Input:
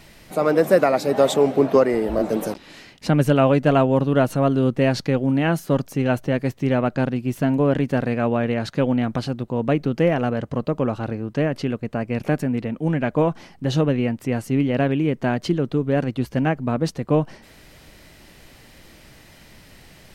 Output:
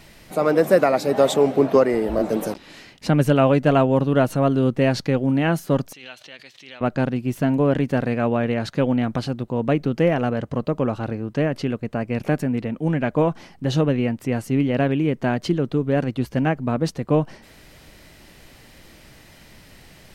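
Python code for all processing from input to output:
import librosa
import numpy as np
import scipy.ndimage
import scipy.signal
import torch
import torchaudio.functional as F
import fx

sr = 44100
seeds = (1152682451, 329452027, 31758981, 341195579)

y = fx.chain(x, sr, fx.bandpass_q(hz=3700.0, q=2.3),
    fx.pre_swell(db_per_s=60.0), at=(5.93, 6.81))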